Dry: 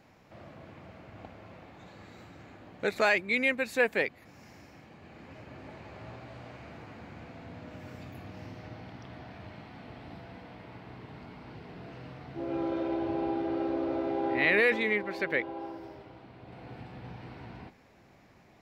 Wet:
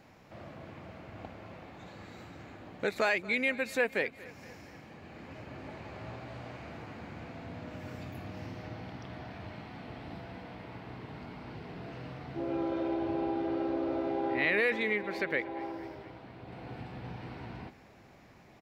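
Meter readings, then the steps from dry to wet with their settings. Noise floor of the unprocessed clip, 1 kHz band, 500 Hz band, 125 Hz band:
−59 dBFS, −1.5 dB, −2.0 dB, +1.5 dB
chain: downward compressor 1.5 to 1, threshold −36 dBFS, peak gain reduction 6 dB
repeating echo 232 ms, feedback 59%, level −20 dB
level +2 dB

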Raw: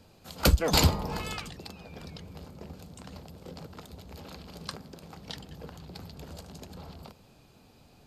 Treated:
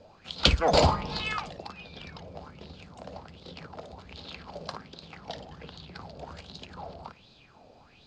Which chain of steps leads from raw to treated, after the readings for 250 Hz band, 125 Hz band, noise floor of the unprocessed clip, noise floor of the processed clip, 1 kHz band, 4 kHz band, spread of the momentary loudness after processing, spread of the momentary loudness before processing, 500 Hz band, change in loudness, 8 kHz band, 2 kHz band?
−1.5 dB, −2.5 dB, −58 dBFS, −57 dBFS, +5.5 dB, +3.0 dB, 22 LU, 22 LU, +5.0 dB, +1.0 dB, −7.0 dB, +2.5 dB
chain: low-pass filter 6,300 Hz 24 dB per octave
flutter between parallel walls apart 9.5 metres, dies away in 0.23 s
auto-filter bell 1.3 Hz 570–4,000 Hz +17 dB
level −2.5 dB

